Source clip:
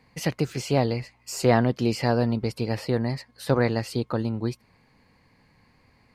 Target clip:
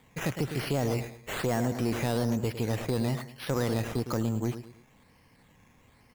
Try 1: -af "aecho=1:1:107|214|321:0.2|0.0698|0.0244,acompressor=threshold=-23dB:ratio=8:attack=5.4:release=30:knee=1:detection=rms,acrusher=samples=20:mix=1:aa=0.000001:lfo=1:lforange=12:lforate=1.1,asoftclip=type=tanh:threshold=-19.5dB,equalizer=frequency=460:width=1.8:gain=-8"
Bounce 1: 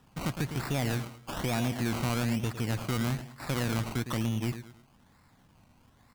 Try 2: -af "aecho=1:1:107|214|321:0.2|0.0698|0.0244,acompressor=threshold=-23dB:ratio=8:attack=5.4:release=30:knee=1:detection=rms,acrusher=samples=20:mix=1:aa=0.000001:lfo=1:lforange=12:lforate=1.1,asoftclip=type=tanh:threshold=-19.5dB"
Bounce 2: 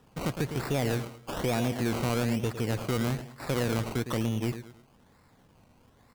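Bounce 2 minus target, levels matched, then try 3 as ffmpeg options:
sample-and-hold swept by an LFO: distortion +5 dB
-af "aecho=1:1:107|214|321:0.2|0.0698|0.0244,acompressor=threshold=-23dB:ratio=8:attack=5.4:release=30:knee=1:detection=rms,acrusher=samples=8:mix=1:aa=0.000001:lfo=1:lforange=4.8:lforate=1.1,asoftclip=type=tanh:threshold=-19.5dB"

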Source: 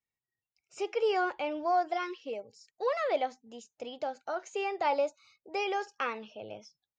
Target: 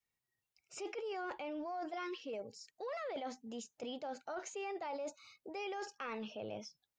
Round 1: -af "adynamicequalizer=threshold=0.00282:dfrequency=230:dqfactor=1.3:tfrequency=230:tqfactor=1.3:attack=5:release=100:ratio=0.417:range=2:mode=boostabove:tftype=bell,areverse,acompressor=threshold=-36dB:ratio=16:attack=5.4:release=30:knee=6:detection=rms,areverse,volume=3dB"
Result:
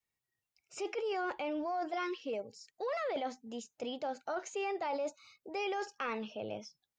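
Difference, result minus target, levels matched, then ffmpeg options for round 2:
downward compressor: peak gain reduction −6 dB
-af "adynamicequalizer=threshold=0.00282:dfrequency=230:dqfactor=1.3:tfrequency=230:tqfactor=1.3:attack=5:release=100:ratio=0.417:range=2:mode=boostabove:tftype=bell,areverse,acompressor=threshold=-42.5dB:ratio=16:attack=5.4:release=30:knee=6:detection=rms,areverse,volume=3dB"

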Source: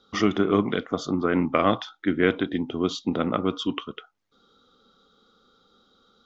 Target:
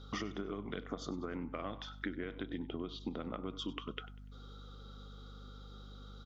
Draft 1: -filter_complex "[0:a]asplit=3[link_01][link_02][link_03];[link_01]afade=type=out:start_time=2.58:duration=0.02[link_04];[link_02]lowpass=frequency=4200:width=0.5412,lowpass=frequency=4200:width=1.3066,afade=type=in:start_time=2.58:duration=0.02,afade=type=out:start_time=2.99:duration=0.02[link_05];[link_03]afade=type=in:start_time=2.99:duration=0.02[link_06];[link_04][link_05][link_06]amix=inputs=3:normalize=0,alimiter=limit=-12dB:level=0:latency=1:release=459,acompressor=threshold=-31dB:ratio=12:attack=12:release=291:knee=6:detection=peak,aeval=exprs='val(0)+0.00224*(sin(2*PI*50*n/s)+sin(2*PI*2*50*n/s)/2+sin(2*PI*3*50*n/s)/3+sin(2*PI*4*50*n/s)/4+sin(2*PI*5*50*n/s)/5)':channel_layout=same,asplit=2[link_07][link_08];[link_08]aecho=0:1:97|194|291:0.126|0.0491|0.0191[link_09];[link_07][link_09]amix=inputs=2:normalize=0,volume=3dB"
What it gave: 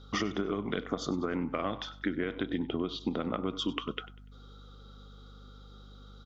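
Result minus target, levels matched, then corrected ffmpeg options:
downward compressor: peak gain reduction −8.5 dB
-filter_complex "[0:a]asplit=3[link_01][link_02][link_03];[link_01]afade=type=out:start_time=2.58:duration=0.02[link_04];[link_02]lowpass=frequency=4200:width=0.5412,lowpass=frequency=4200:width=1.3066,afade=type=in:start_time=2.58:duration=0.02,afade=type=out:start_time=2.99:duration=0.02[link_05];[link_03]afade=type=in:start_time=2.99:duration=0.02[link_06];[link_04][link_05][link_06]amix=inputs=3:normalize=0,alimiter=limit=-12dB:level=0:latency=1:release=459,acompressor=threshold=-40.5dB:ratio=12:attack=12:release=291:knee=6:detection=peak,aeval=exprs='val(0)+0.00224*(sin(2*PI*50*n/s)+sin(2*PI*2*50*n/s)/2+sin(2*PI*3*50*n/s)/3+sin(2*PI*4*50*n/s)/4+sin(2*PI*5*50*n/s)/5)':channel_layout=same,asplit=2[link_07][link_08];[link_08]aecho=0:1:97|194|291:0.126|0.0491|0.0191[link_09];[link_07][link_09]amix=inputs=2:normalize=0,volume=3dB"

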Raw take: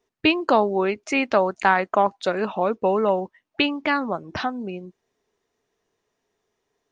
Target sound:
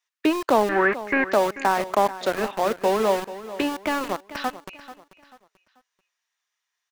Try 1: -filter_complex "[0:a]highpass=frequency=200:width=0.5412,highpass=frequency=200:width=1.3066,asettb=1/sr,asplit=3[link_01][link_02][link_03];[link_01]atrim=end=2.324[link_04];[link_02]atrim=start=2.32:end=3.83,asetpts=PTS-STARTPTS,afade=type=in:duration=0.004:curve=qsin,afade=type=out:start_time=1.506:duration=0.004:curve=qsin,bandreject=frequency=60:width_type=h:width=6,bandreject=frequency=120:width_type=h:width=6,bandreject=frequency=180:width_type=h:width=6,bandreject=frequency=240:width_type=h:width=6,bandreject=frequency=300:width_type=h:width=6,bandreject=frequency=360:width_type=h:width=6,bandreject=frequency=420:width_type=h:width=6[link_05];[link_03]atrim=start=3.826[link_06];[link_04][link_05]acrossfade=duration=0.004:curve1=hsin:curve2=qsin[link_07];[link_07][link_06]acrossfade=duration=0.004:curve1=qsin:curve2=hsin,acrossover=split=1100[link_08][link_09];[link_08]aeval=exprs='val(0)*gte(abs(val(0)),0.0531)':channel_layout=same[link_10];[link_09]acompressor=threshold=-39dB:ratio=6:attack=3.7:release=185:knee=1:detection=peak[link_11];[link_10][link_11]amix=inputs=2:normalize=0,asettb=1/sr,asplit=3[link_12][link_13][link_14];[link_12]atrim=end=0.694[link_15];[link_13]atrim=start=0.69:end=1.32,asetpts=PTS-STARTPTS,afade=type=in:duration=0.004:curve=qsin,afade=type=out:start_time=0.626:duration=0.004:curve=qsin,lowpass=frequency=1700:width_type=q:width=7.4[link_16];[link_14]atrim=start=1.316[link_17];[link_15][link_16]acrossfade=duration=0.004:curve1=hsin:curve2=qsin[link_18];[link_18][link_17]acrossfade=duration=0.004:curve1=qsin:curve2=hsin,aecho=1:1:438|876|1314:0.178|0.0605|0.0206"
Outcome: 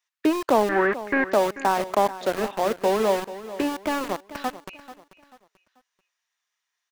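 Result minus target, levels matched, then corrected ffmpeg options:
downward compressor: peak gain reduction +8.5 dB
-filter_complex "[0:a]highpass=frequency=200:width=0.5412,highpass=frequency=200:width=1.3066,asettb=1/sr,asplit=3[link_01][link_02][link_03];[link_01]atrim=end=2.324[link_04];[link_02]atrim=start=2.32:end=3.83,asetpts=PTS-STARTPTS,afade=type=in:duration=0.004:curve=qsin,afade=type=out:start_time=1.506:duration=0.004:curve=qsin,bandreject=frequency=60:width_type=h:width=6,bandreject=frequency=120:width_type=h:width=6,bandreject=frequency=180:width_type=h:width=6,bandreject=frequency=240:width_type=h:width=6,bandreject=frequency=300:width_type=h:width=6,bandreject=frequency=360:width_type=h:width=6,bandreject=frequency=420:width_type=h:width=6[link_05];[link_03]atrim=start=3.826[link_06];[link_04][link_05]acrossfade=duration=0.004:curve1=hsin:curve2=qsin[link_07];[link_07][link_06]acrossfade=duration=0.004:curve1=qsin:curve2=hsin,acrossover=split=1100[link_08][link_09];[link_08]aeval=exprs='val(0)*gte(abs(val(0)),0.0531)':channel_layout=same[link_10];[link_09]acompressor=threshold=-29dB:ratio=6:attack=3.7:release=185:knee=1:detection=peak[link_11];[link_10][link_11]amix=inputs=2:normalize=0,asettb=1/sr,asplit=3[link_12][link_13][link_14];[link_12]atrim=end=0.694[link_15];[link_13]atrim=start=0.69:end=1.32,asetpts=PTS-STARTPTS,afade=type=in:duration=0.004:curve=qsin,afade=type=out:start_time=0.626:duration=0.004:curve=qsin,lowpass=frequency=1700:width_type=q:width=7.4[link_16];[link_14]atrim=start=1.316[link_17];[link_15][link_16]acrossfade=duration=0.004:curve1=hsin:curve2=qsin[link_18];[link_18][link_17]acrossfade=duration=0.004:curve1=qsin:curve2=hsin,aecho=1:1:438|876|1314:0.178|0.0605|0.0206"

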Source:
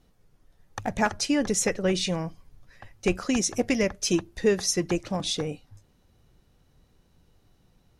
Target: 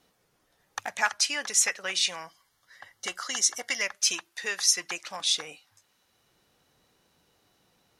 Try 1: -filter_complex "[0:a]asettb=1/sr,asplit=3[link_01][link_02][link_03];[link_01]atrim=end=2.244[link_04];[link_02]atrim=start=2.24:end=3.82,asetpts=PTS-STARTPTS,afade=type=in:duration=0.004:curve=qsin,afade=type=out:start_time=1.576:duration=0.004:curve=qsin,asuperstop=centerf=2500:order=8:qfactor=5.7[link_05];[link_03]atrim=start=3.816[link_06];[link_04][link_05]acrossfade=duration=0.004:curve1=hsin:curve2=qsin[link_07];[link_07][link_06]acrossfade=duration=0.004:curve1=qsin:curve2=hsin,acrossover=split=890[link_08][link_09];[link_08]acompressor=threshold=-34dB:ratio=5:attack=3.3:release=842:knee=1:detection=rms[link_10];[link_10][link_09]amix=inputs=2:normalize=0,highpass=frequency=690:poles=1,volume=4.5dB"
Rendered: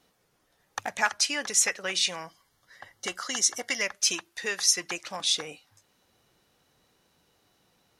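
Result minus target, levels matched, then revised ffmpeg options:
downward compressor: peak gain reduction −6.5 dB
-filter_complex "[0:a]asettb=1/sr,asplit=3[link_01][link_02][link_03];[link_01]atrim=end=2.244[link_04];[link_02]atrim=start=2.24:end=3.82,asetpts=PTS-STARTPTS,afade=type=in:duration=0.004:curve=qsin,afade=type=out:start_time=1.576:duration=0.004:curve=qsin,asuperstop=centerf=2500:order=8:qfactor=5.7[link_05];[link_03]atrim=start=3.816[link_06];[link_04][link_05]acrossfade=duration=0.004:curve1=hsin:curve2=qsin[link_07];[link_07][link_06]acrossfade=duration=0.004:curve1=qsin:curve2=hsin,acrossover=split=890[link_08][link_09];[link_08]acompressor=threshold=-42dB:ratio=5:attack=3.3:release=842:knee=1:detection=rms[link_10];[link_10][link_09]amix=inputs=2:normalize=0,highpass=frequency=690:poles=1,volume=4.5dB"

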